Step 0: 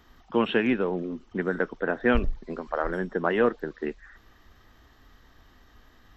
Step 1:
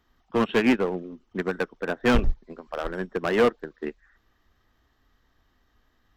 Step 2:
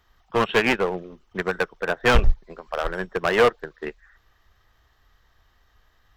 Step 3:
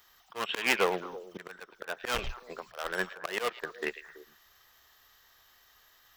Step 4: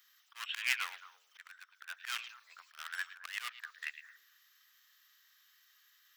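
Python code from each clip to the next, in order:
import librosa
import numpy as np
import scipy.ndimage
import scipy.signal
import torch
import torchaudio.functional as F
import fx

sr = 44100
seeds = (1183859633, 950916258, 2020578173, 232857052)

y1 = np.clip(10.0 ** (21.0 / 20.0) * x, -1.0, 1.0) / 10.0 ** (21.0 / 20.0)
y1 = fx.upward_expand(y1, sr, threshold_db=-35.0, expansion=2.5)
y1 = F.gain(torch.from_numpy(y1), 8.0).numpy()
y2 = fx.peak_eq(y1, sr, hz=260.0, db=-13.0, octaves=0.97)
y2 = F.gain(torch.from_numpy(y2), 6.0).numpy()
y3 = fx.riaa(y2, sr, side='recording')
y3 = fx.auto_swell(y3, sr, attack_ms=323.0)
y3 = fx.echo_stepped(y3, sr, ms=110, hz=2900.0, octaves=-1.4, feedback_pct=70, wet_db=-9.0)
y4 = scipy.signal.sosfilt(scipy.signal.butter(4, 1400.0, 'highpass', fs=sr, output='sos'), y3)
y4 = F.gain(torch.from_numpy(y4), -4.5).numpy()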